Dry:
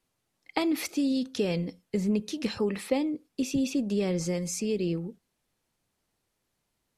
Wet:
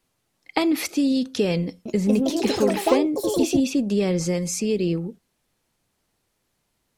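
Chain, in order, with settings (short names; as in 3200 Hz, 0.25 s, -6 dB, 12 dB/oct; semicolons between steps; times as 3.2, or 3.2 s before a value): 1.64–3.84 echoes that change speed 0.215 s, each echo +4 st, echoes 3; gain +6 dB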